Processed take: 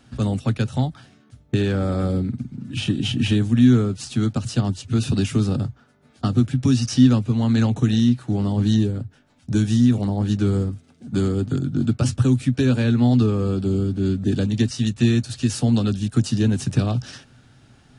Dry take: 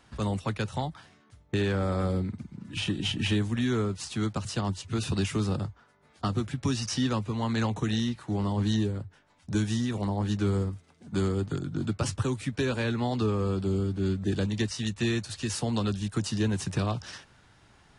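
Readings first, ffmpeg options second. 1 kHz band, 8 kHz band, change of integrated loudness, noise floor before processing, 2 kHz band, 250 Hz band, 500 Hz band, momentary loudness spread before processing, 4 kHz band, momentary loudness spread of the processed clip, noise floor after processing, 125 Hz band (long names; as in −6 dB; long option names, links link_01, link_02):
+1.0 dB, +4.0 dB, +9.0 dB, −61 dBFS, +2.0 dB, +10.0 dB, +4.5 dB, 6 LU, +3.5 dB, 8 LU, −55 dBFS, +9.5 dB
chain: -af "equalizer=frequency=125:width_type=o:width=0.33:gain=11,equalizer=frequency=250:width_type=o:width=0.33:gain=11,equalizer=frequency=1000:width_type=o:width=0.33:gain=-9,equalizer=frequency=2000:width_type=o:width=0.33:gain=-5,volume=4dB"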